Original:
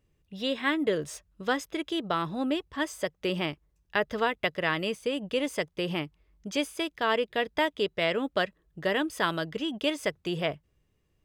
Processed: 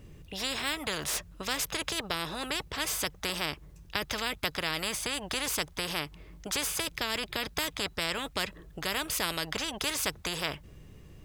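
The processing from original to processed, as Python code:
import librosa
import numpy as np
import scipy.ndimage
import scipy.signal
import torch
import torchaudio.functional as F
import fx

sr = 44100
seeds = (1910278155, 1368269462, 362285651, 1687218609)

y = fx.low_shelf(x, sr, hz=200.0, db=10.5)
y = fx.spectral_comp(y, sr, ratio=4.0)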